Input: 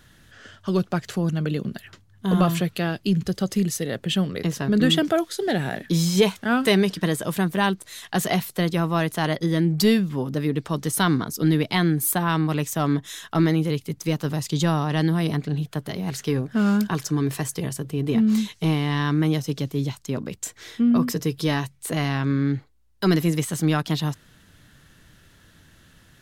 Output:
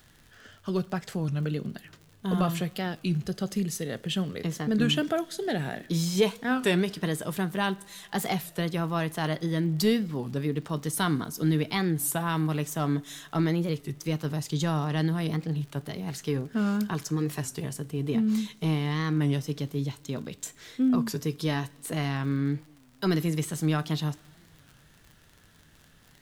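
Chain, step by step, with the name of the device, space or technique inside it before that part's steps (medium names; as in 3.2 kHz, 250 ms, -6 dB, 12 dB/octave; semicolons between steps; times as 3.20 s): 20.03–20.46 s: peaking EQ 3.7 kHz +7.5 dB 0.38 oct; two-slope reverb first 0.29 s, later 3 s, from -21 dB, DRR 14 dB; warped LP (warped record 33 1/3 rpm, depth 160 cents; crackle 55 per s -35 dBFS; pink noise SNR 38 dB); trim -6 dB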